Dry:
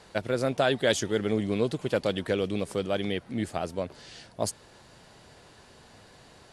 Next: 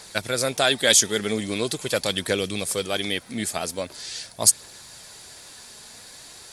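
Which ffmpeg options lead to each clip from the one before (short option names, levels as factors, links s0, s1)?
-af "crystalizer=i=8.5:c=0,aphaser=in_gain=1:out_gain=1:delay=5:decay=0.25:speed=0.43:type=triangular,bandreject=f=2900:w=11,volume=0.891"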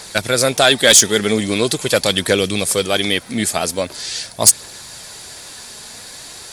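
-af "aeval=exprs='0.891*sin(PI/2*1.78*val(0)/0.891)':c=same"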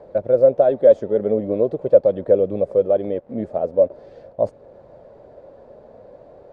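-filter_complex "[0:a]asplit=2[s0][s1];[s1]alimiter=limit=0.376:level=0:latency=1:release=369,volume=1[s2];[s0][s2]amix=inputs=2:normalize=0,acrusher=bits=4:mix=0:aa=0.000001,lowpass=f=560:t=q:w=6.7,volume=0.237"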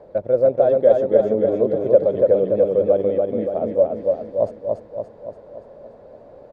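-af "aecho=1:1:287|574|861|1148|1435|1722|2009|2296:0.708|0.389|0.214|0.118|0.0648|0.0356|0.0196|0.0108,volume=0.841"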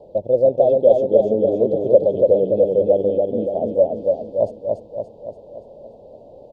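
-af "asuperstop=centerf=1600:order=8:qfactor=0.81,volume=1.12"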